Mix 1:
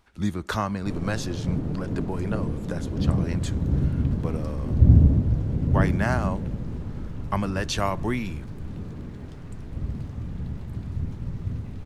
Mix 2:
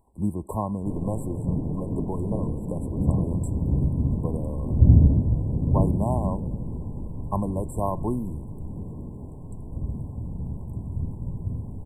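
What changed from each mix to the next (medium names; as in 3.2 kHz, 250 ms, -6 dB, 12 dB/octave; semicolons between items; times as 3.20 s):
master: add brick-wall FIR band-stop 1.1–7.5 kHz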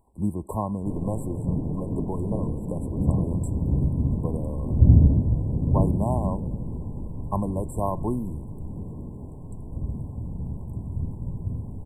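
no change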